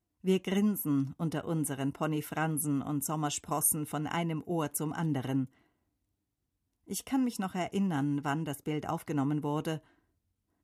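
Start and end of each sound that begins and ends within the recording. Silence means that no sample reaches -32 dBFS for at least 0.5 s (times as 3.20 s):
6.91–9.76 s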